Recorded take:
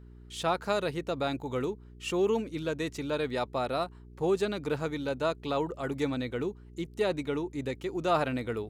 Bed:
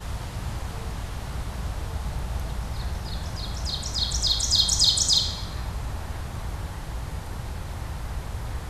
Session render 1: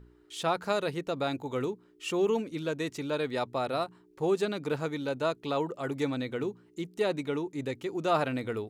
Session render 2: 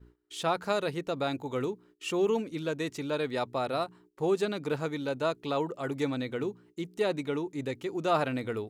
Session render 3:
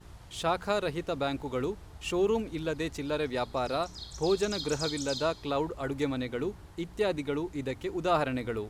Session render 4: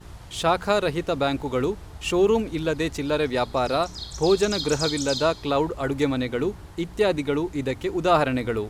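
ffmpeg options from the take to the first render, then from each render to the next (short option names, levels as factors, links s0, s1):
-af "bandreject=f=60:t=h:w=4,bandreject=f=120:t=h:w=4,bandreject=f=180:t=h:w=4,bandreject=f=240:t=h:w=4"
-af "agate=range=0.126:threshold=0.00158:ratio=16:detection=peak"
-filter_complex "[1:a]volume=0.133[s0];[0:a][s0]amix=inputs=2:normalize=0"
-af "volume=2.37"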